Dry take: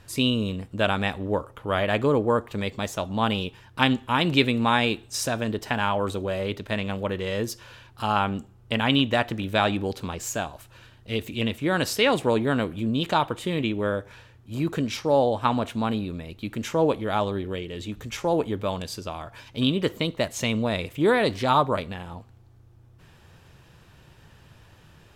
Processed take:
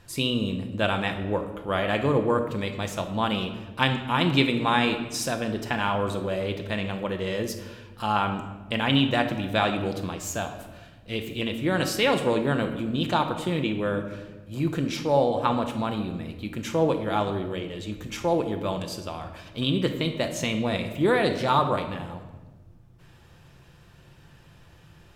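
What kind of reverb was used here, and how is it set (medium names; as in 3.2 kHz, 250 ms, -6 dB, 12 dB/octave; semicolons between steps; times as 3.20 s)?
simulated room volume 840 m³, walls mixed, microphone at 0.82 m; trim -2 dB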